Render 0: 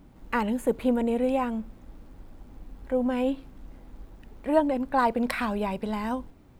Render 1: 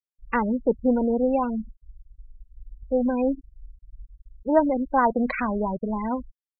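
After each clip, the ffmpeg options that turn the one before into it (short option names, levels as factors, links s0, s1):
-af "afftfilt=real='re*gte(hypot(re,im),0.0562)':imag='im*gte(hypot(re,im),0.0562)':win_size=1024:overlap=0.75,volume=1.41"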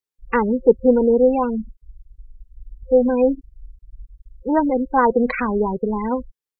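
-af "superequalizer=7b=2:8b=0.447,volume=1.58"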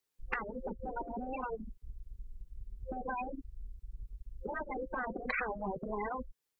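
-filter_complex "[0:a]acrossover=split=84|530[s0][s1][s2];[s0]acompressor=threshold=0.00447:ratio=4[s3];[s1]acompressor=threshold=0.0447:ratio=4[s4];[s2]acompressor=threshold=0.0562:ratio=4[s5];[s3][s4][s5]amix=inputs=3:normalize=0,afftfilt=real='re*lt(hypot(re,im),0.251)':imag='im*lt(hypot(re,im),0.251)':win_size=1024:overlap=0.75,acompressor=threshold=0.00562:ratio=2,volume=1.78"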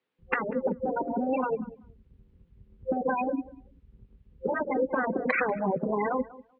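-filter_complex "[0:a]highpass=120,equalizer=f=170:t=q:w=4:g=6,equalizer=f=270:t=q:w=4:g=7,equalizer=f=530:t=q:w=4:g=7,lowpass=f=3200:w=0.5412,lowpass=f=3200:w=1.3066,asplit=2[s0][s1];[s1]adelay=192,lowpass=f=2400:p=1,volume=0.112,asplit=2[s2][s3];[s3]adelay=192,lowpass=f=2400:p=1,volume=0.16[s4];[s0][s2][s4]amix=inputs=3:normalize=0,volume=2.37"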